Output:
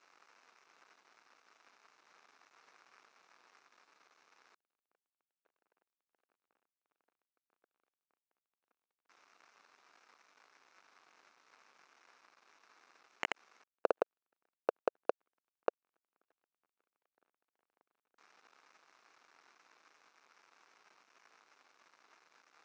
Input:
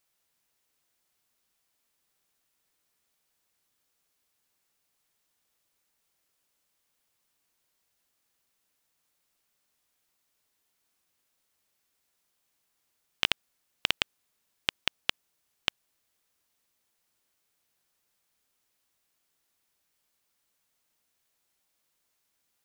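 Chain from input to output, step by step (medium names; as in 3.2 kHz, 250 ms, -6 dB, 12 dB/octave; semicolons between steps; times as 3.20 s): peak limiter -14.5 dBFS, peak gain reduction 11 dB; LFO low-pass square 0.11 Hz 540–2000 Hz; overdrive pedal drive 33 dB, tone 1.2 kHz, clips at -15.5 dBFS; crossover distortion -58.5 dBFS; cabinet simulation 320–7000 Hz, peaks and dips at 580 Hz -4 dB, 1.2 kHz +3 dB, 1.9 kHz -7 dB, 3.2 kHz -7 dB, 4.7 kHz -4 dB; trim +6.5 dB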